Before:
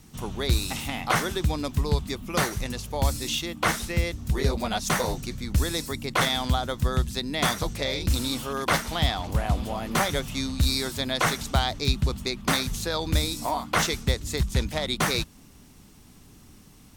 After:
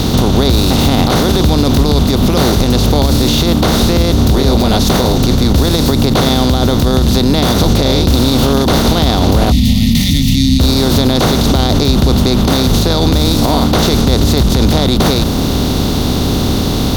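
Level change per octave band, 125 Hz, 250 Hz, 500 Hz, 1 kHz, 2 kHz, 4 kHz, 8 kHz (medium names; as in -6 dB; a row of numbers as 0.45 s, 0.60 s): +17.0 dB, +21.0 dB, +16.5 dB, +11.0 dB, +6.0 dB, +14.0 dB, +11.0 dB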